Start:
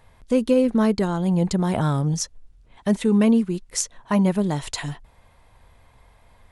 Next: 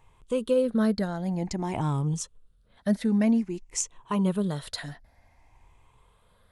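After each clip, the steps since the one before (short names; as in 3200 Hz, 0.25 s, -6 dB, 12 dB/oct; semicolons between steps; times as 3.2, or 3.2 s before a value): moving spectral ripple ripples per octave 0.69, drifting +0.52 Hz, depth 10 dB; gain -7.5 dB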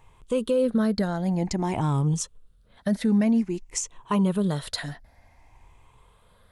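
limiter -19 dBFS, peak gain reduction 9 dB; gain +4 dB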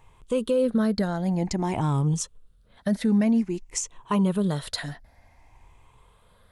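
nothing audible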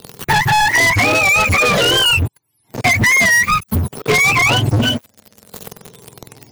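spectrum mirrored in octaves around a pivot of 660 Hz; sample leveller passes 5; three-band squash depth 70%; gain +4 dB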